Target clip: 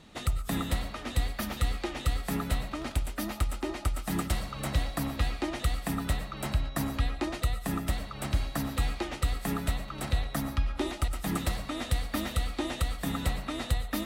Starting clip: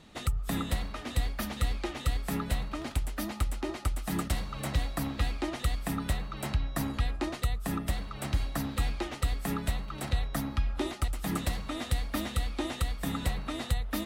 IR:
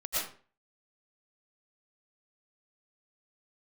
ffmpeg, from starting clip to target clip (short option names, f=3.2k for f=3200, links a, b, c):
-filter_complex "[0:a]asplit=2[a][b];[1:a]atrim=start_sample=2205,atrim=end_sample=6615[c];[b][c]afir=irnorm=-1:irlink=0,volume=-15dB[d];[a][d]amix=inputs=2:normalize=0"